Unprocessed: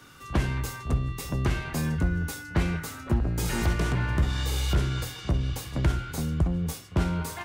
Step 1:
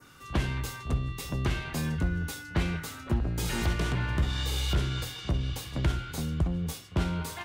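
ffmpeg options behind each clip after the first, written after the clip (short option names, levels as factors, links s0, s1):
-af "adynamicequalizer=threshold=0.00224:dfrequency=3400:dqfactor=1.4:tfrequency=3400:tqfactor=1.4:attack=5:release=100:ratio=0.375:range=2.5:mode=boostabove:tftype=bell,volume=0.708"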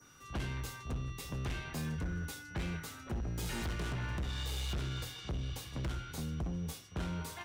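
-af "aeval=exprs='val(0)+0.00141*sin(2*PI*5800*n/s)':c=same,asoftclip=type=hard:threshold=0.0473,volume=0.473"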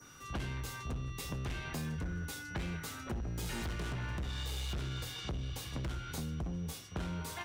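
-af "acompressor=threshold=0.00891:ratio=4,volume=1.68"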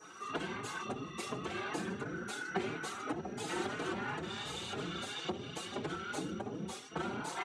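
-filter_complex "[0:a]afftfilt=real='hypot(re,im)*cos(2*PI*random(0))':imag='hypot(re,im)*sin(2*PI*random(1))':win_size=512:overlap=0.75,highpass=230,equalizer=f=380:t=q:w=4:g=9,equalizer=f=780:t=q:w=4:g=7,equalizer=f=1300:t=q:w=4:g=5,equalizer=f=5200:t=q:w=4:g=-6,lowpass=f=9000:w=0.5412,lowpass=f=9000:w=1.3066,asplit=2[s0][s1];[s1]adelay=4.3,afreqshift=2.9[s2];[s0][s2]amix=inputs=2:normalize=1,volume=3.55"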